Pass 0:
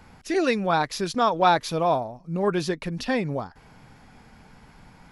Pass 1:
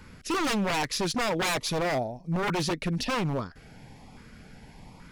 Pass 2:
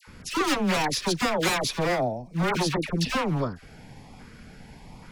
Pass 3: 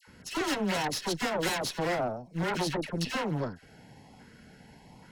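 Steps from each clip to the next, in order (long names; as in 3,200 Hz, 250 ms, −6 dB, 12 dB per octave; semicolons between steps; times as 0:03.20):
auto-filter notch saw up 1.2 Hz 710–1,700 Hz; wave folding −24.5 dBFS; level +2.5 dB
all-pass dispersion lows, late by 74 ms, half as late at 1,200 Hz; level +2.5 dB
notch comb filter 1,200 Hz; tube saturation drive 22 dB, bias 0.75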